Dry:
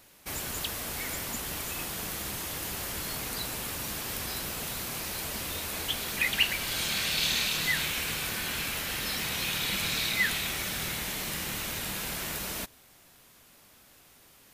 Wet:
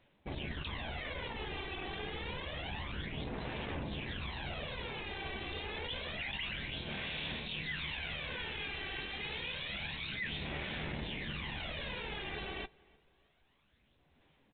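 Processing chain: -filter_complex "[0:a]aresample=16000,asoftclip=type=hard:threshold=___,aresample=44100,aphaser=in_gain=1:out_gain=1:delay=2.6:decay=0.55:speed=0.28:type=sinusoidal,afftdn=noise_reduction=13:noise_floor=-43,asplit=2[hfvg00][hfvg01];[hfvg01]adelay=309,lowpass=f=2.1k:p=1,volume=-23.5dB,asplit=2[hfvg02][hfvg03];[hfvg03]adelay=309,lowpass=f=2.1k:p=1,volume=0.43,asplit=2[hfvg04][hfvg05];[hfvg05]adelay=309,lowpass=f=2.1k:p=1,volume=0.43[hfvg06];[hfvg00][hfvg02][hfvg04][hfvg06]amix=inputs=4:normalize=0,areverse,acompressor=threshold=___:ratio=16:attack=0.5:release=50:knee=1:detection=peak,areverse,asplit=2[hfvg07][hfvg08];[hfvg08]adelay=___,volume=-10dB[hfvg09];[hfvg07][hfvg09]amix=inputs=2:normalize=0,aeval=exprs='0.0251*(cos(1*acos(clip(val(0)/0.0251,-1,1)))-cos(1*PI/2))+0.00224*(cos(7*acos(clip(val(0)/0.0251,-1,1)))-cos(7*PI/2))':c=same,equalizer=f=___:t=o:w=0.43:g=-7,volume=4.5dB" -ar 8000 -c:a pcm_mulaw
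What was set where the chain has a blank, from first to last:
-23.5dB, -38dB, 14, 1.3k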